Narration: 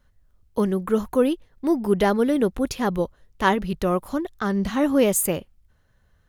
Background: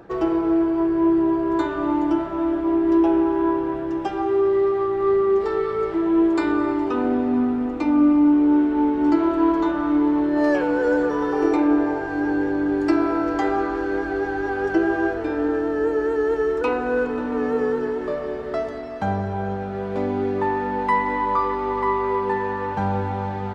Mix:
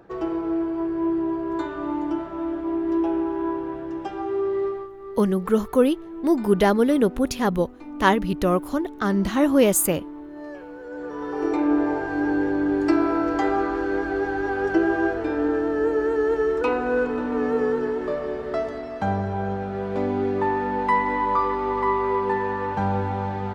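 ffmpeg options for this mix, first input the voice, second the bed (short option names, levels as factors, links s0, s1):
-filter_complex "[0:a]adelay=4600,volume=1.19[s0];[1:a]volume=3.98,afade=t=out:st=4.66:d=0.24:silence=0.237137,afade=t=in:st=10.89:d=1.05:silence=0.133352[s1];[s0][s1]amix=inputs=2:normalize=0"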